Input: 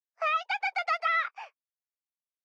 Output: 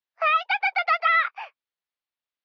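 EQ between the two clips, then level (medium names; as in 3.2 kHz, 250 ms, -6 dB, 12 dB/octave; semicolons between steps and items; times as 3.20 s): low-pass 4.3 kHz 24 dB/octave; bass shelf 450 Hz -7.5 dB; +7.5 dB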